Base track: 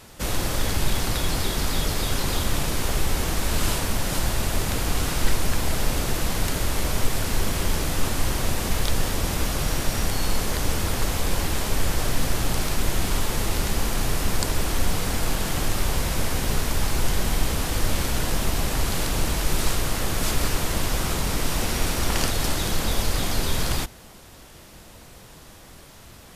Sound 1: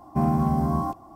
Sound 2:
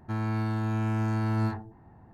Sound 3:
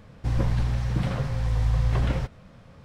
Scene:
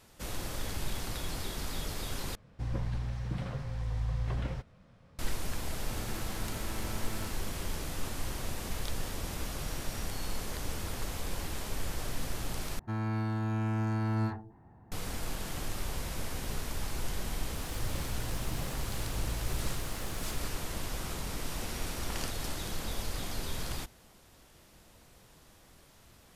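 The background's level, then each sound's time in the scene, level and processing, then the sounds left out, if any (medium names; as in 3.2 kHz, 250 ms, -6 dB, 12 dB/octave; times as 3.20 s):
base track -12.5 dB
2.35 s: replace with 3 -10 dB
5.79 s: add 2 -16.5 dB + formants flattened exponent 0.6
12.79 s: replace with 2 -3.5 dB
17.55 s: add 3 -15.5 dB + zero-crossing glitches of -28.5 dBFS
not used: 1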